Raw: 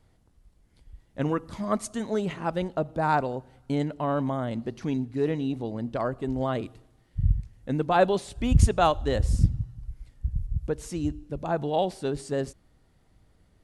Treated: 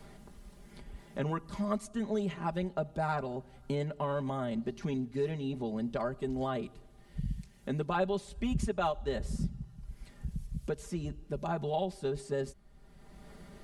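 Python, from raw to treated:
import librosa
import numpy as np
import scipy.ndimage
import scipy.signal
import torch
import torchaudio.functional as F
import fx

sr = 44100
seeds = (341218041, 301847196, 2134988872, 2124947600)

y = x + 0.78 * np.pad(x, (int(5.0 * sr / 1000.0), 0))[:len(x)]
y = fx.band_squash(y, sr, depth_pct=70)
y = F.gain(torch.from_numpy(y), -8.5).numpy()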